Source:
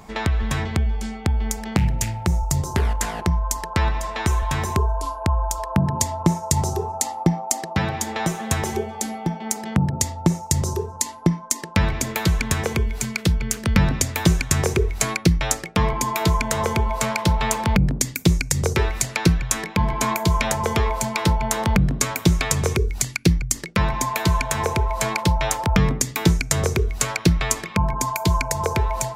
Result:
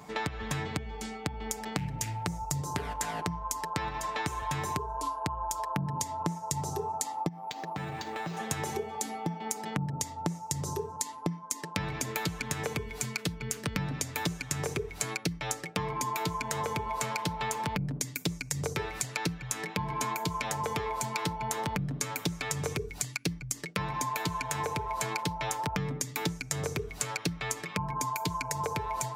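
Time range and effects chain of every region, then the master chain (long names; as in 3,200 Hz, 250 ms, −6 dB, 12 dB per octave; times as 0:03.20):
0:07.28–0:08.37: downward compressor 5 to 1, threshold −28 dBFS + linearly interpolated sample-rate reduction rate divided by 4×
whole clip: high-pass filter 98 Hz 12 dB per octave; comb filter 6.8 ms, depth 47%; downward compressor, threshold −24 dBFS; level −5 dB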